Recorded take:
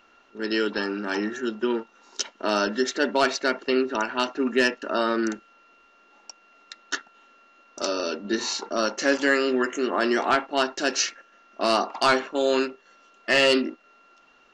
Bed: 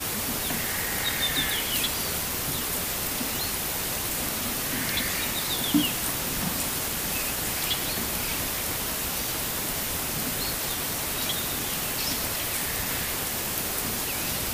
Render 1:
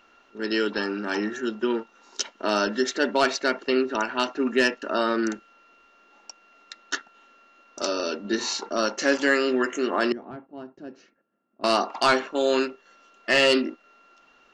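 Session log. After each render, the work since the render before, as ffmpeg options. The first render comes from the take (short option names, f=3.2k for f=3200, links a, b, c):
-filter_complex "[0:a]asettb=1/sr,asplit=3[a][b][c];[a]atrim=end=10.124[d];[b]atrim=start=10.12:end=11.64,asetpts=PTS-STARTPTS,afade=t=in:d=0.004:c=qsin,afade=t=out:st=1.516:d=0.004:c=qsin,bandpass=f=130:t=q:w=1.6[e];[c]atrim=start=11.636[f];[d][e]acrossfade=d=0.004:c1=hsin:c2=qsin[g];[g][f]acrossfade=d=0.004:c1=qsin:c2=hsin"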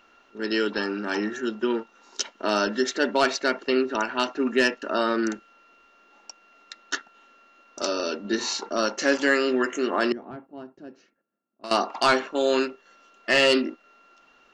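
-filter_complex "[0:a]asplit=2[a][b];[a]atrim=end=11.71,asetpts=PTS-STARTPTS,afade=t=out:st=10.47:d=1.24:silence=0.177828[c];[b]atrim=start=11.71,asetpts=PTS-STARTPTS,afade=t=in:d=0.004:c=hsin:silence=0.177828[d];[c][d]concat=n=2:v=0:a=1"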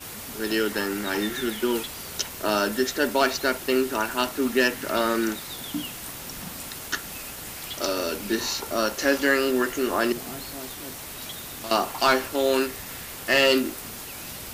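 -filter_complex "[1:a]volume=-8.5dB[a];[0:a][a]amix=inputs=2:normalize=0"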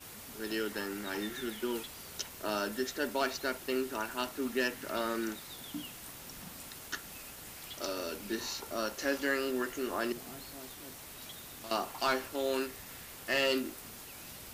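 -af "volume=-10.5dB"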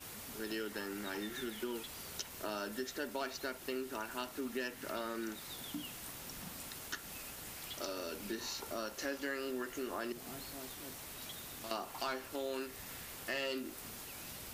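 -af "acompressor=threshold=-39dB:ratio=2.5"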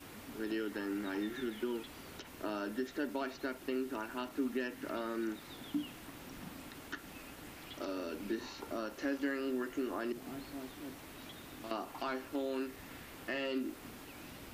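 -filter_complex "[0:a]acrossover=split=3400[a][b];[b]acompressor=threshold=-57dB:ratio=4:attack=1:release=60[c];[a][c]amix=inputs=2:normalize=0,equalizer=f=290:t=o:w=0.52:g=8.5"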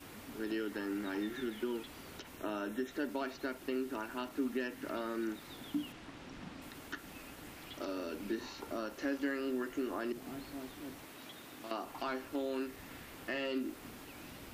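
-filter_complex "[0:a]asettb=1/sr,asplit=3[a][b][c];[a]atrim=end=2.374[d];[b]atrim=start=2.37:end=2.91,asetpts=PTS-STARTPTS,afade=t=in:d=0.004:c=qsin,afade=t=out:st=0.536:d=0.004:c=qsin,asuperstop=centerf=4700:order=8:qfactor=4.1[e];[c]atrim=start=2.906[f];[d][e]acrossfade=d=0.004:c1=hsin:c2=qsin[g];[g][f]acrossfade=d=0.004:c1=qsin:c2=hsin,asettb=1/sr,asplit=3[h][i][j];[h]atrim=end=5.924[k];[i]atrim=start=5.92:end=6.62,asetpts=PTS-STARTPTS,afade=t=in:d=0.004:c=qsin,afade=t=out:st=0.696:d=0.004:c=qsin,lowpass=5.7k[l];[j]atrim=start=6.616[m];[k][l]acrossfade=d=0.004:c1=hsin:c2=qsin[n];[n][m]acrossfade=d=0.004:c1=qsin:c2=hsin,asettb=1/sr,asplit=3[o][p][q];[o]atrim=end=11.054[r];[p]atrim=start=11.05:end=11.84,asetpts=PTS-STARTPTS,afade=t=in:d=0.004:c=qsin,afade=t=out:st=0.786:d=0.004:c=qsin,highpass=f=210:p=1[s];[q]atrim=start=11.836[t];[r][s]acrossfade=d=0.004:c1=hsin:c2=qsin[u];[u][t]acrossfade=d=0.004:c1=qsin:c2=hsin"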